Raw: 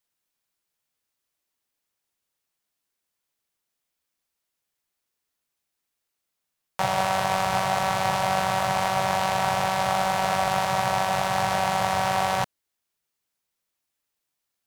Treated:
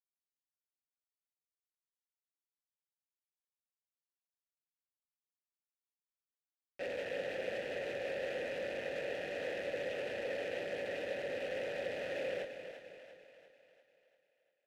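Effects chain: spectral contrast lowered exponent 0.14; HPF 160 Hz 12 dB/oct; notch 1800 Hz, Q 27; Schmitt trigger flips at -22.5 dBFS; vowel filter e; on a send: split-band echo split 500 Hz, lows 0.264 s, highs 0.345 s, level -9 dB; on the sum: gain +1.5 dB

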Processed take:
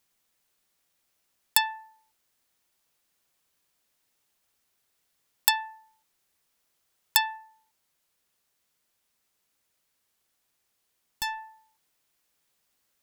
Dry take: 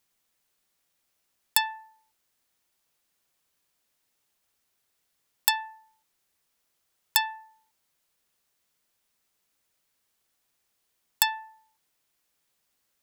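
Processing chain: 7.37–11.38 tube stage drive 27 dB, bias 0.35; gain +1 dB

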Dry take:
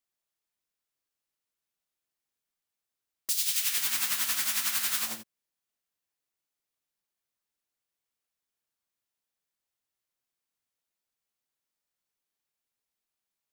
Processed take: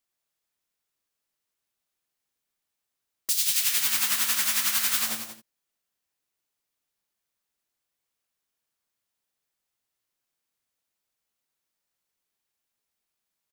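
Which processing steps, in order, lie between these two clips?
loudspeakers at several distances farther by 38 m -12 dB, 63 m -10 dB; gain +3.5 dB

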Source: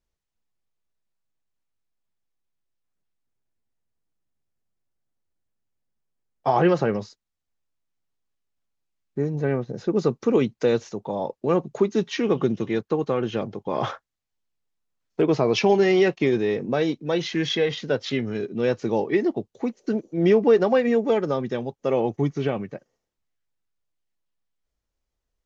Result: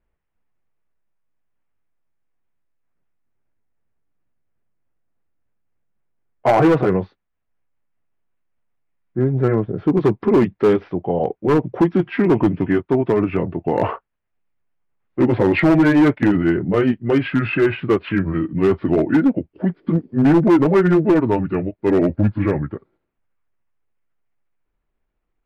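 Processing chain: gliding pitch shift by -6 st starting unshifted; LPF 2400 Hz 24 dB/oct; hard clip -17.5 dBFS, distortion -12 dB; gain +8.5 dB

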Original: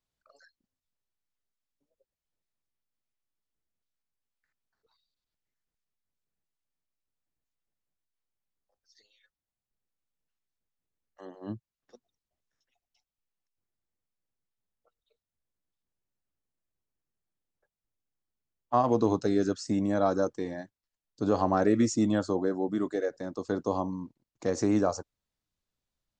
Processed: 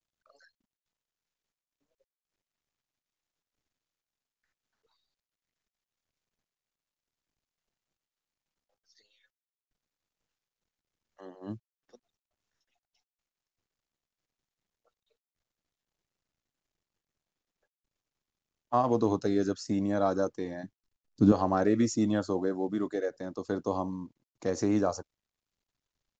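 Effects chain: 20.63–21.32 resonant low shelf 350 Hz +10 dB, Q 1.5; companded quantiser 8-bit; downsampling 16000 Hz; gain -1.5 dB

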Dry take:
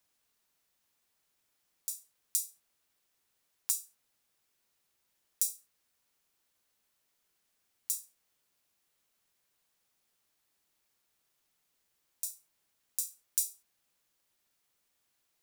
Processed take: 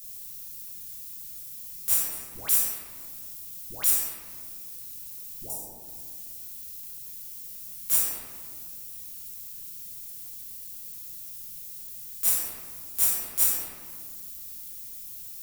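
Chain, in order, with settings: EQ curve 150 Hz 0 dB, 970 Hz -22 dB, 16000 Hz +12 dB; compressor 6:1, threshold -44 dBFS, peak gain reduction 25 dB; 1.98–5.5 dispersion highs, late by 0.144 s, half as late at 800 Hz; reverb RT60 1.9 s, pre-delay 5 ms, DRR -8 dB; maximiser +30 dB; gain -7 dB

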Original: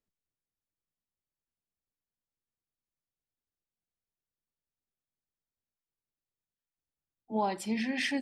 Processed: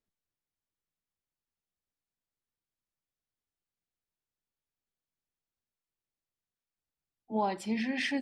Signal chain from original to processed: high shelf 8500 Hz -10.5 dB

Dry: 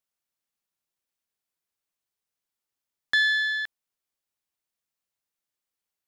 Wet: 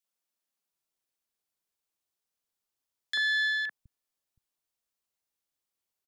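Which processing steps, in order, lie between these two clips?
three bands offset in time highs, mids, lows 40/720 ms, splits 150/1900 Hz; limiter -21 dBFS, peak gain reduction 7 dB

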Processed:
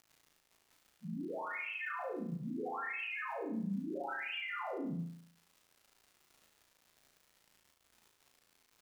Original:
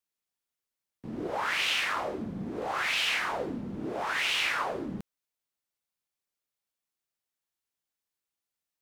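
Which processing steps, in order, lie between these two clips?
loudest bins only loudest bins 2; formant shift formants -3 st; crackle 180/s -59 dBFS; limiter -43.5 dBFS, peak gain reduction 10 dB; flutter echo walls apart 6.1 m, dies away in 0.61 s; gain +6.5 dB

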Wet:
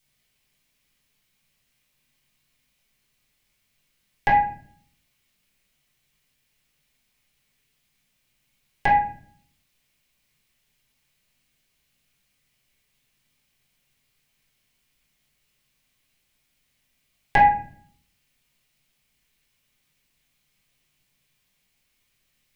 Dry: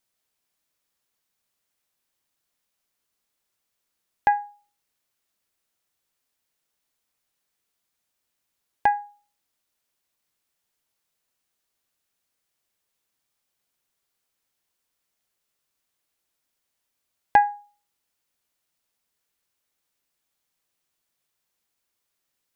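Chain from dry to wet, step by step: band shelf 680 Hz -11 dB 2.8 oct; in parallel at -0.5 dB: compressor, threshold -36 dBFS, peak gain reduction 13.5 dB; on the sum: reverb RT60 0.50 s, pre-delay 3 ms, DRR -8.5 dB

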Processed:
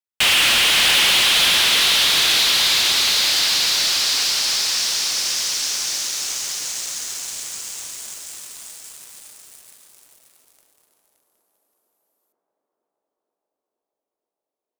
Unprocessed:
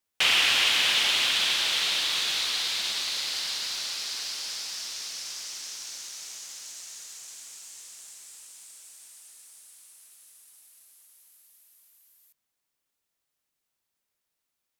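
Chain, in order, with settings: sample leveller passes 5; tape echo 0.474 s, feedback 87%, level -16.5 dB, low-pass 1800 Hz; lo-fi delay 0.573 s, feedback 35%, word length 8-bit, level -8 dB; gain -3.5 dB

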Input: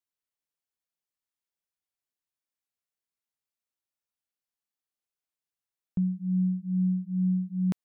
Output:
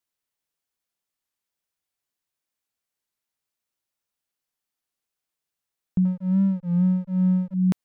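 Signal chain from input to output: 6.05–7.54 backlash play -36 dBFS; record warp 33 1/3 rpm, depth 100 cents; gain +6 dB

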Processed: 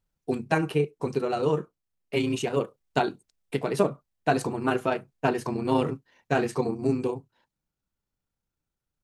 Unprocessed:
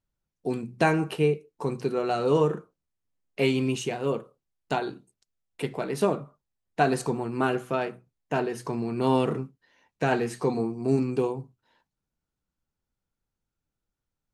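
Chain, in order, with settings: granular stretch 0.63×, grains 67 ms; vocal rider within 3 dB 0.5 s; gain +2 dB

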